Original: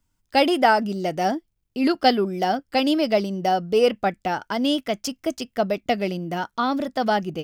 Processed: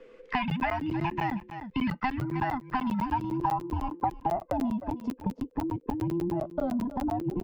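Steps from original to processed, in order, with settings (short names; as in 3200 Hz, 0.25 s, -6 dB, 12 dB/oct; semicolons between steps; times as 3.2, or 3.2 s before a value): band inversion scrambler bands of 500 Hz; dynamic EQ 1100 Hz, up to -5 dB, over -34 dBFS, Q 1.4; compressor 4:1, threshold -25 dBFS, peak gain reduction 10 dB; low-pass sweep 2200 Hz -> 530 Hz, 1.88–5.1; on a send: echo 0.314 s -16 dB; on the sum: crackling interface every 0.10 s, samples 512, zero, from 0.5; three-band squash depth 70%; gain -2.5 dB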